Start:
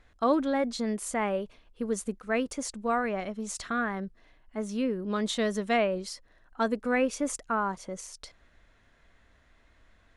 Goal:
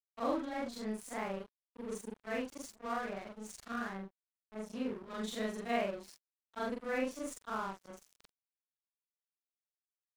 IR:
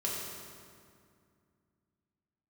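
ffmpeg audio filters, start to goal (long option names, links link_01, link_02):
-af "afftfilt=real='re':imag='-im':win_size=4096:overlap=0.75,aeval=exprs='sgn(val(0))*max(abs(val(0))-0.00668,0)':channel_layout=same,volume=-3.5dB"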